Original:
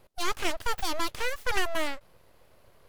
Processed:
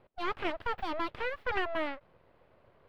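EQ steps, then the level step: air absorption 420 m; low shelf 60 Hz -11.5 dB; 0.0 dB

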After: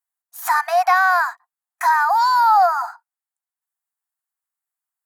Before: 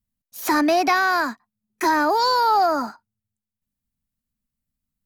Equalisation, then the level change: brick-wall FIR high-pass 670 Hz; band shelf 3700 Hz -9.5 dB; high shelf 11000 Hz -5.5 dB; +4.5 dB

